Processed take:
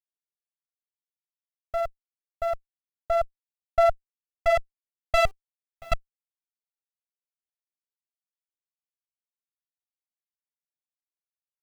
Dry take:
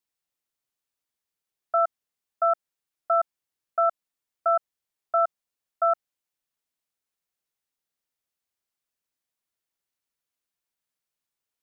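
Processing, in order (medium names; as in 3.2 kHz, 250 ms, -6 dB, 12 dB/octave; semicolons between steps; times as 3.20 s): local Wiener filter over 25 samples; low-pass sweep 490 Hz -> 1.3 kHz, 2.86–5.17 s; 5.25–5.92 s: inharmonic resonator 380 Hz, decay 0.2 s, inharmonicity 0.008; bit crusher 9-bit; sliding maximum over 17 samples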